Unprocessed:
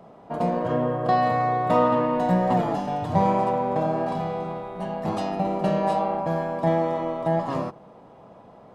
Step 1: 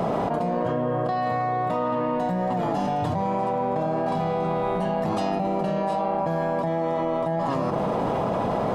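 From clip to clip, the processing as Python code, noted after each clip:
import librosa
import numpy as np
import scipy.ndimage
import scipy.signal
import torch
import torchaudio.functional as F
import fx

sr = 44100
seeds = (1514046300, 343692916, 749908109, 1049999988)

y = fx.env_flatten(x, sr, amount_pct=100)
y = y * 10.0 ** (-8.0 / 20.0)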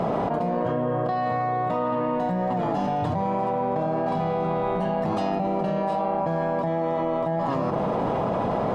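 y = fx.high_shelf(x, sr, hz=6500.0, db=-11.0)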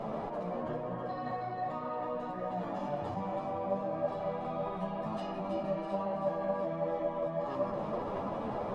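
y = fx.comb_fb(x, sr, f0_hz=580.0, decay_s=0.2, harmonics='all', damping=0.0, mix_pct=70)
y = fx.echo_split(y, sr, split_hz=320.0, low_ms=450, high_ms=326, feedback_pct=52, wet_db=-5.5)
y = fx.ensemble(y, sr)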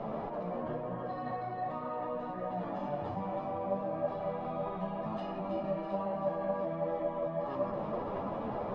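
y = fx.air_absorb(x, sr, metres=140.0)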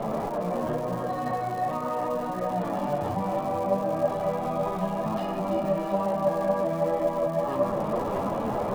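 y = fx.dmg_crackle(x, sr, seeds[0], per_s=380.0, level_db=-45.0)
y = y * 10.0 ** (8.5 / 20.0)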